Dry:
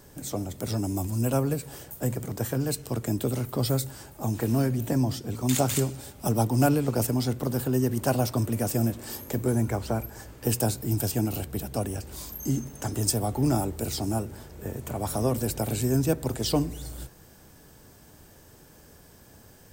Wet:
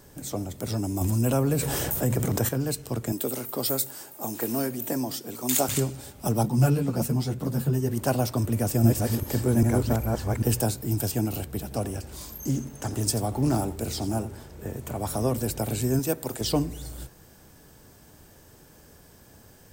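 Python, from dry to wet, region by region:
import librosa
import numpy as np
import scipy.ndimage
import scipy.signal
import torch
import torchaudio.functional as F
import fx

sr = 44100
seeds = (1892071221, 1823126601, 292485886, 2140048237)

y = fx.chain(x, sr, fx.notch(hz=4600.0, q=18.0),
    fx.env_flatten(amount_pct=70), at=(1.01, 2.49))
y = fx.chain(y, sr, fx.highpass(hz=260.0, slope=12),
    fx.high_shelf(hz=9300.0, db=11.5), at=(3.12, 5.69))
y = fx.chain(y, sr, fx.peak_eq(hz=160.0, db=14.0, octaves=0.63),
    fx.ensemble(), at=(6.43, 7.89))
y = fx.chain(y, sr, fx.reverse_delay(ms=397, wet_db=-0.5),
    fx.low_shelf(hz=120.0, db=6.5), at=(8.44, 10.62))
y = fx.chain(y, sr, fx.echo_single(ms=86, db=-15.0),
    fx.doppler_dist(depth_ms=0.18), at=(11.58, 14.75))
y = fx.chain(y, sr, fx.highpass(hz=290.0, slope=6),
    fx.high_shelf(hz=10000.0, db=7.5), at=(15.99, 16.41))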